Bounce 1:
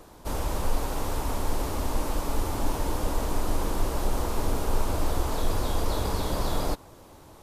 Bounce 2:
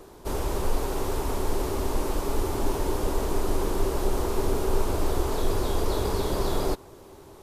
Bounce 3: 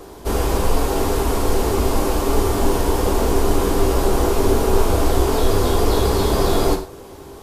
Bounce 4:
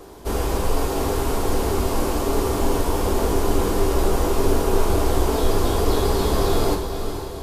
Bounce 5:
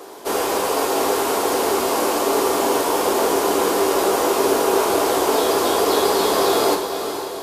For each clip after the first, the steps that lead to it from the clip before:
peaking EQ 390 Hz +12 dB 0.27 oct
gated-style reverb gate 150 ms falling, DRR 2 dB; trim +7.5 dB
echo that smears into a reverb 464 ms, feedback 52%, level -8.5 dB; trim -3.5 dB
high-pass 400 Hz 12 dB/octave; trim +7 dB

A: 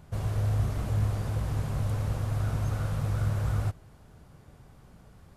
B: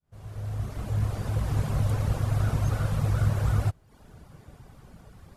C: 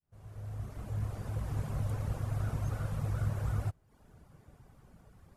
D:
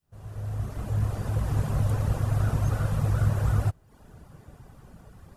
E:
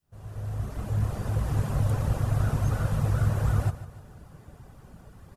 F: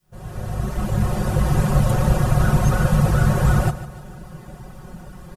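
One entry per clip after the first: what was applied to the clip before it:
fade-in on the opening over 1.65 s; reverb removal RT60 0.65 s; trim +5.5 dB
peaking EQ 3.9 kHz -4 dB 1.2 oct; trim -8.5 dB
band-stop 2.2 kHz, Q 16; trim +9 dB
feedback delay 149 ms, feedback 48%, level -13.5 dB
comb 5.5 ms, depth 86%; trim +9 dB

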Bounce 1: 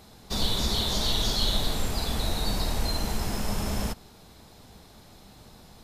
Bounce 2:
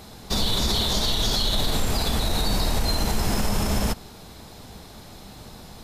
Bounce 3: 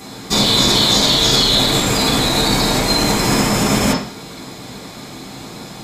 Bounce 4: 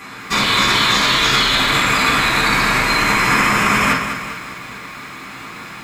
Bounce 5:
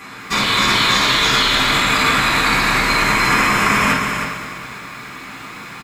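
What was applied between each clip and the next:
peak limiter -21.5 dBFS, peak gain reduction 9 dB; trim +8 dB
high-pass 77 Hz 6 dB/octave; reverberation RT60 0.50 s, pre-delay 3 ms, DRR -9 dB; trim +5 dB
high-order bell 1.7 kHz +14.5 dB; bit-crushed delay 201 ms, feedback 55%, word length 6-bit, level -9 dB; trim -6 dB
delay 313 ms -7 dB; trim -1 dB

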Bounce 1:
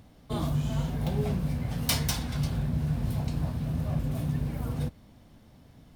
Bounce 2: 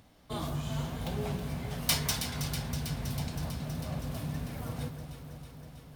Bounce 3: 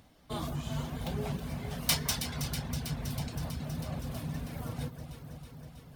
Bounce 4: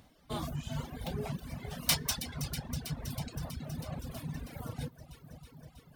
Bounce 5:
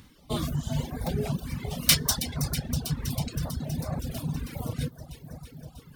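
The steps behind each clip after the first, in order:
bass shelf 490 Hz -8 dB; on a send: echo whose repeats swap between lows and highs 161 ms, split 1.8 kHz, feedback 85%, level -8 dB
reverb removal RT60 0.5 s; on a send at -15 dB: reverberation RT60 2.5 s, pre-delay 3 ms
reverb removal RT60 1.8 s
step-sequenced notch 5.5 Hz 670–3000 Hz; trim +8.5 dB

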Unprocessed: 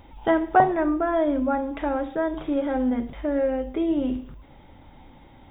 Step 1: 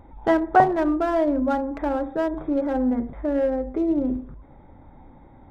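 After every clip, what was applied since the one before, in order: local Wiener filter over 15 samples; trim +1.5 dB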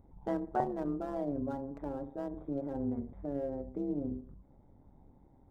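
AM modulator 140 Hz, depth 60%; peaking EQ 2.1 kHz -12.5 dB 2.7 oct; trim -8 dB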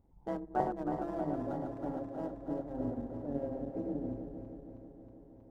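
backward echo that repeats 159 ms, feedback 84%, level -5 dB; upward expansion 1.5:1, over -43 dBFS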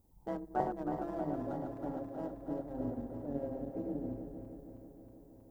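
added noise violet -77 dBFS; trim -1.5 dB

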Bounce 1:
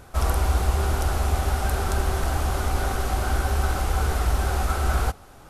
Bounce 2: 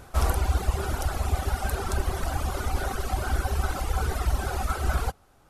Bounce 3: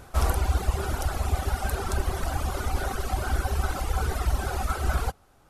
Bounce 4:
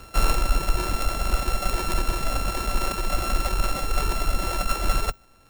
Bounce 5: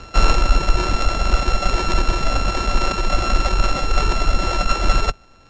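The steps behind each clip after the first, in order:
reverb removal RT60 2 s
no audible change
sorted samples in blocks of 32 samples; frequency shift -31 Hz; trim +3.5 dB
steep low-pass 7 kHz 48 dB/octave; trim +6.5 dB

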